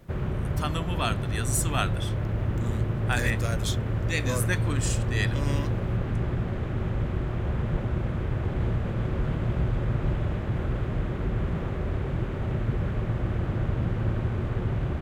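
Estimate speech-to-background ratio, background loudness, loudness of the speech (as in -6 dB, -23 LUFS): -2.5 dB, -29.0 LUFS, -31.5 LUFS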